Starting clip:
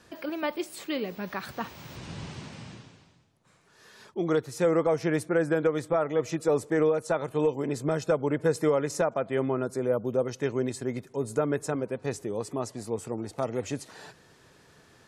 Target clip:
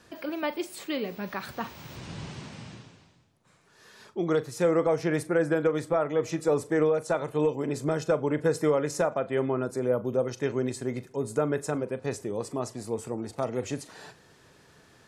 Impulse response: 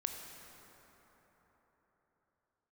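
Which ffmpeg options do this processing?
-filter_complex "[0:a]asplit=2[s0][s1];[1:a]atrim=start_sample=2205,atrim=end_sample=3528,adelay=40[s2];[s1][s2]afir=irnorm=-1:irlink=0,volume=0.211[s3];[s0][s3]amix=inputs=2:normalize=0"

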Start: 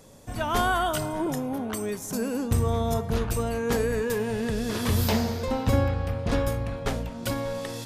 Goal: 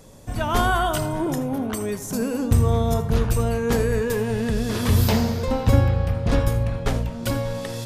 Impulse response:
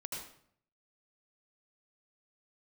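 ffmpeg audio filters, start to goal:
-filter_complex "[0:a]asplit=2[s0][s1];[s1]lowshelf=f=430:g=5.5[s2];[1:a]atrim=start_sample=2205,atrim=end_sample=3969,lowshelf=f=130:g=9.5[s3];[s2][s3]afir=irnorm=-1:irlink=0,volume=0.562[s4];[s0][s4]amix=inputs=2:normalize=0"

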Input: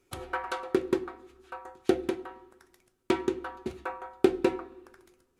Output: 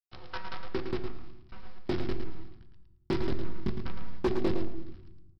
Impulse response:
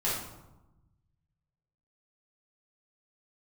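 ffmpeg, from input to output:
-filter_complex "[0:a]flanger=delay=15:depth=7.2:speed=1.2,aresample=11025,acrusher=bits=6:dc=4:mix=0:aa=0.000001,aresample=44100,asubboost=boost=11:cutoff=200,asplit=2[s0][s1];[1:a]atrim=start_sample=2205[s2];[s1][s2]afir=irnorm=-1:irlink=0,volume=0.15[s3];[s0][s3]amix=inputs=2:normalize=0,asoftclip=type=hard:threshold=0.141,aecho=1:1:110|220|330:0.447|0.0804|0.0145,adynamicequalizer=threshold=0.00562:dfrequency=2200:dqfactor=0.7:tfrequency=2200:tqfactor=0.7:attack=5:release=100:ratio=0.375:range=2.5:mode=cutabove:tftype=highshelf,volume=0.562"

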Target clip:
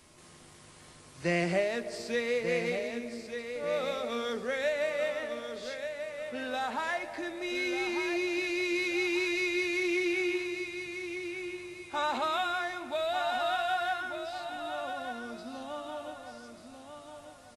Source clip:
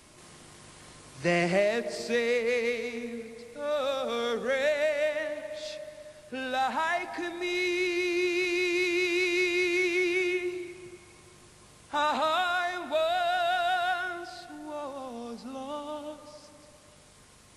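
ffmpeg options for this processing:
-filter_complex "[0:a]asplit=2[s0][s1];[s1]adelay=12,volume=0.299[s2];[s0][s2]amix=inputs=2:normalize=0,asplit=2[s3][s4];[s4]aecho=0:1:1191|2382|3573|4764:0.398|0.131|0.0434|0.0143[s5];[s3][s5]amix=inputs=2:normalize=0,volume=0.631"

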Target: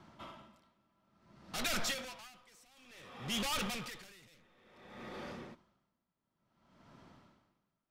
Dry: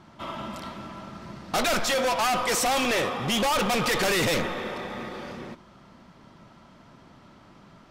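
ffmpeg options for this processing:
-filter_complex "[0:a]acrossover=split=230|1500|6800[s0][s1][s2][s3];[s1]asoftclip=type=hard:threshold=0.0168[s4];[s0][s4][s2][s3]amix=inputs=4:normalize=0,aeval=exprs='val(0)*pow(10,-30*(0.5-0.5*cos(2*PI*0.57*n/s))/20)':c=same,volume=0.447"

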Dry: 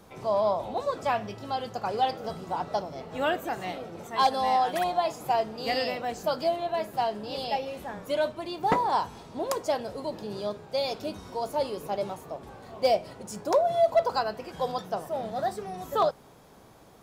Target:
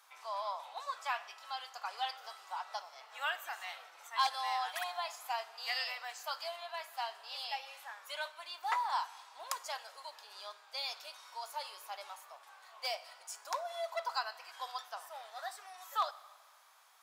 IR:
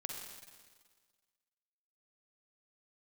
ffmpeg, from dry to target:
-filter_complex "[0:a]highpass=f=1000:w=0.5412,highpass=f=1000:w=1.3066,asplit=2[s0][s1];[1:a]atrim=start_sample=2205[s2];[s1][s2]afir=irnorm=-1:irlink=0,volume=0.266[s3];[s0][s3]amix=inputs=2:normalize=0,volume=0.562"

